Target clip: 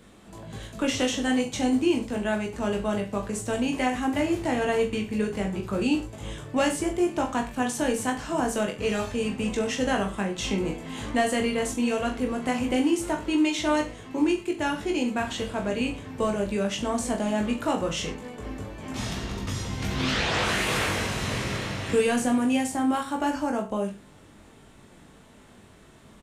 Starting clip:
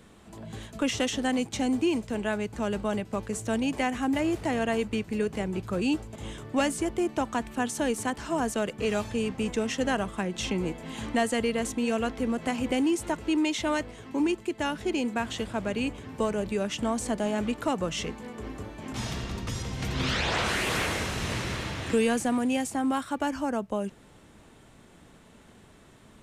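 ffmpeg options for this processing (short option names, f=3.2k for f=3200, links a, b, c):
-af "aecho=1:1:20|42|66.2|92.82|122.1:0.631|0.398|0.251|0.158|0.1"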